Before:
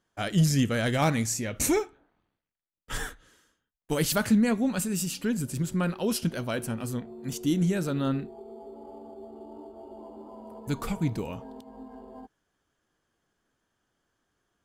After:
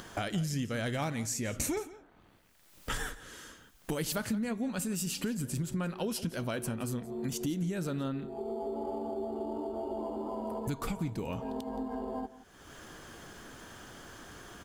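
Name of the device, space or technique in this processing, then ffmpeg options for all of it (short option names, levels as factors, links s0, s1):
upward and downward compression: -af "acompressor=mode=upward:threshold=0.0501:ratio=2.5,acompressor=threshold=0.0282:ratio=5,aecho=1:1:172:0.141"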